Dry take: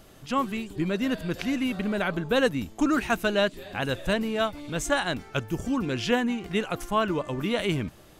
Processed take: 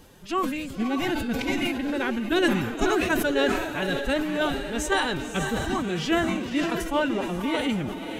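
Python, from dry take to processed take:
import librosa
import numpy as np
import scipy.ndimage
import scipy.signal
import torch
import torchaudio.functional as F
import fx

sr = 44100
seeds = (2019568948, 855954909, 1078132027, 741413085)

y = fx.echo_diffused(x, sr, ms=554, feedback_pct=40, wet_db=-7.5)
y = fx.pitch_keep_formants(y, sr, semitones=5.5)
y = fx.sustainer(y, sr, db_per_s=47.0)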